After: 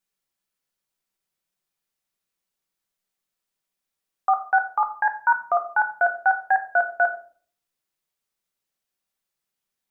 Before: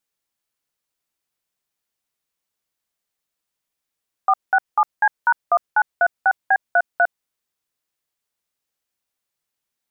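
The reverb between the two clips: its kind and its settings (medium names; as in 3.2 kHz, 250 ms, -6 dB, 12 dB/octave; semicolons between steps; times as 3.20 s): simulated room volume 410 m³, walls furnished, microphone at 1.1 m; trim -3 dB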